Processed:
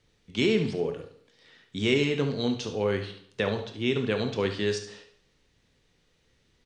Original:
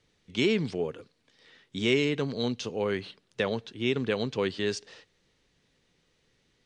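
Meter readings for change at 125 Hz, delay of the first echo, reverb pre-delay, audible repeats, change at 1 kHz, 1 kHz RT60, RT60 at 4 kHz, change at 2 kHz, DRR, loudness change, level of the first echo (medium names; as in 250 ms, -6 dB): +3.5 dB, 70 ms, 21 ms, 1, +1.5 dB, 0.60 s, 0.55 s, +1.0 dB, 5.5 dB, +1.5 dB, -11.5 dB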